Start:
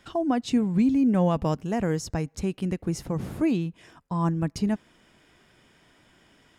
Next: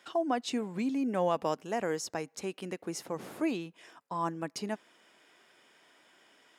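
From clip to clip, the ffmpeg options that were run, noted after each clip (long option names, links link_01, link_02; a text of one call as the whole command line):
ffmpeg -i in.wav -af "highpass=410,volume=-1.5dB" out.wav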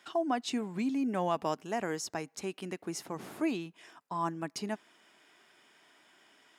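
ffmpeg -i in.wav -af "equalizer=frequency=510:width_type=o:width=0.24:gain=-8.5" out.wav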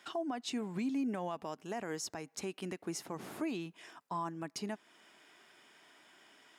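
ffmpeg -i in.wav -af "alimiter=level_in=5.5dB:limit=-24dB:level=0:latency=1:release=261,volume=-5.5dB,volume=1dB" out.wav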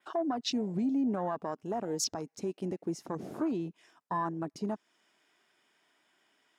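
ffmpeg -i in.wav -af "asoftclip=type=tanh:threshold=-30dB,adynamicequalizer=threshold=0.00112:dfrequency=5800:dqfactor=1.7:tfrequency=5800:tqfactor=1.7:attack=5:release=100:ratio=0.375:range=3.5:mode=boostabove:tftype=bell,afwtdn=0.00708,volume=7dB" out.wav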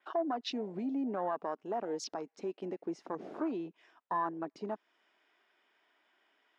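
ffmpeg -i in.wav -af "highpass=330,lowpass=3300" out.wav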